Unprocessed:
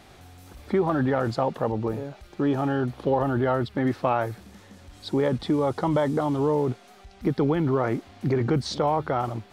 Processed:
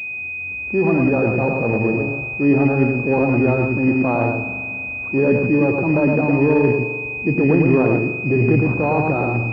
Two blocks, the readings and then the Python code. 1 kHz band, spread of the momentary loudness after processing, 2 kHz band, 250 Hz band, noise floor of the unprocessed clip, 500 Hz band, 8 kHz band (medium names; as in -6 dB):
+2.0 dB, 8 LU, +16.0 dB, +9.0 dB, -51 dBFS, +7.0 dB, no reading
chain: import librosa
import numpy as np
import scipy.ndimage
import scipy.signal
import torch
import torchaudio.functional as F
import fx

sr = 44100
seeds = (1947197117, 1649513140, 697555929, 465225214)

p1 = scipy.signal.sosfilt(scipy.signal.butter(2, 110.0, 'highpass', fs=sr, output='sos'), x)
p2 = fx.low_shelf(p1, sr, hz=210.0, db=10.0)
p3 = fx.rev_spring(p2, sr, rt60_s=2.6, pass_ms=(42,), chirp_ms=50, drr_db=11.0)
p4 = fx.transient(p3, sr, attack_db=-6, sustain_db=2)
p5 = fx.rider(p4, sr, range_db=10, speed_s=2.0)
p6 = fx.dynamic_eq(p5, sr, hz=340.0, q=1.0, threshold_db=-33.0, ratio=4.0, max_db=5)
p7 = p6 + fx.echo_single(p6, sr, ms=110, db=-3.5, dry=0)
y = fx.pwm(p7, sr, carrier_hz=2500.0)